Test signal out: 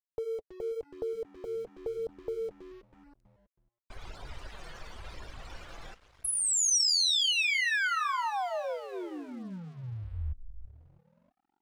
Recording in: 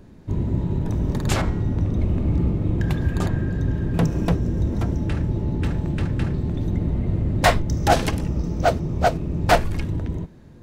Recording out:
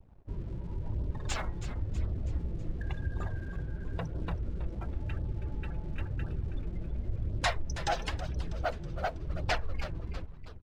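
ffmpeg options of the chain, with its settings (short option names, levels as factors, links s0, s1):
-filter_complex "[0:a]acompressor=threshold=0.0316:ratio=2,afftdn=nr=34:nf=-40,lowpass=6900,highshelf=f=5000:g=9,asplit=2[s0][s1];[s1]asplit=6[s2][s3][s4][s5][s6][s7];[s2]adelay=323,afreqshift=-84,volume=0.251[s8];[s3]adelay=646,afreqshift=-168,volume=0.133[s9];[s4]adelay=969,afreqshift=-252,volume=0.0708[s10];[s5]adelay=1292,afreqshift=-336,volume=0.0376[s11];[s6]adelay=1615,afreqshift=-420,volume=0.0197[s12];[s7]adelay=1938,afreqshift=-504,volume=0.0105[s13];[s8][s9][s10][s11][s12][s13]amix=inputs=6:normalize=0[s14];[s0][s14]amix=inputs=2:normalize=0,aeval=exprs='sgn(val(0))*max(abs(val(0))-0.00251,0)':c=same,acontrast=71,equalizer=f=220:t=o:w=2.2:g=-13,flanger=delay=0.2:depth=5.8:regen=-34:speed=0.95:shape=sinusoidal,volume=0.631"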